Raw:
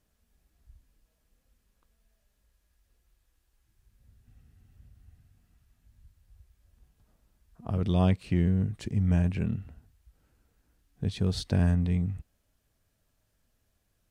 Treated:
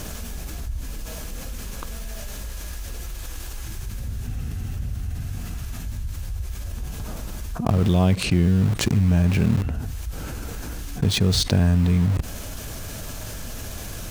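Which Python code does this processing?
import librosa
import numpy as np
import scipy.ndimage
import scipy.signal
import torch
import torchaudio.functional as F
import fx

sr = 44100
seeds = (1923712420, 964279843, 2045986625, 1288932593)

p1 = fx.peak_eq(x, sr, hz=6300.0, db=4.0, octaves=0.33)
p2 = fx.notch(p1, sr, hz=1900.0, q=18.0)
p3 = fx.quant_dither(p2, sr, seeds[0], bits=6, dither='none')
p4 = p2 + (p3 * 10.0 ** (-7.0 / 20.0))
p5 = fx.env_flatten(p4, sr, amount_pct=70)
y = p5 * 10.0 ** (1.5 / 20.0)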